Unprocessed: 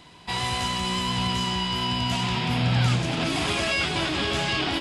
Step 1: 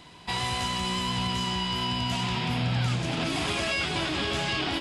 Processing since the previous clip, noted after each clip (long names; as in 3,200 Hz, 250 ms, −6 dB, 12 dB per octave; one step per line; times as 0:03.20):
downward compressor 2 to 1, threshold −27 dBFS, peak gain reduction 5.5 dB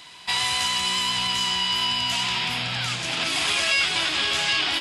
tilt shelving filter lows −9.5 dB, about 770 Hz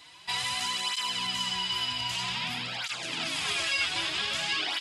through-zero flanger with one copy inverted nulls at 0.52 Hz, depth 5.4 ms
level −4 dB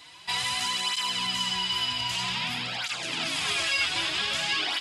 convolution reverb RT60 2.1 s, pre-delay 3 ms, DRR 17 dB
in parallel at −9 dB: soft clipping −24.5 dBFS, distortion −18 dB